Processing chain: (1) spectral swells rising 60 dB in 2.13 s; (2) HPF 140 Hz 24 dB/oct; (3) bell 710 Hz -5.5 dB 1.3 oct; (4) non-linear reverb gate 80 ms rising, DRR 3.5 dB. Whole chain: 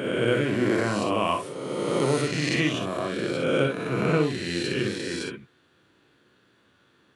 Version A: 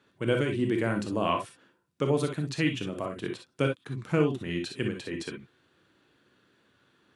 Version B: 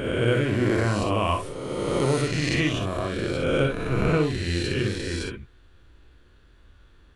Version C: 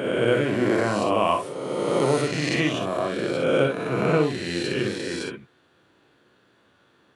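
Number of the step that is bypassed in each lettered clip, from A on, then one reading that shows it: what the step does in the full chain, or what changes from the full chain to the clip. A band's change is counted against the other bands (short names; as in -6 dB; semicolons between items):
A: 1, 8 kHz band -4.0 dB; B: 2, 125 Hz band +5.0 dB; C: 3, 1 kHz band +3.0 dB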